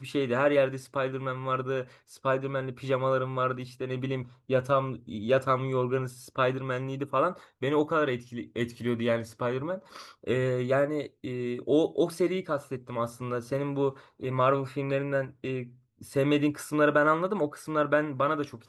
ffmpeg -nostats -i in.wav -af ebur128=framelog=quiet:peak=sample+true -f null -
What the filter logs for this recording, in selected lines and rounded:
Integrated loudness:
  I:         -28.9 LUFS
  Threshold: -39.0 LUFS
Loudness range:
  LRA:         3.1 LU
  Threshold: -49.3 LUFS
  LRA low:   -30.5 LUFS
  LRA high:  -27.5 LUFS
Sample peak:
  Peak:      -11.7 dBFS
True peak:
  Peak:      -11.7 dBFS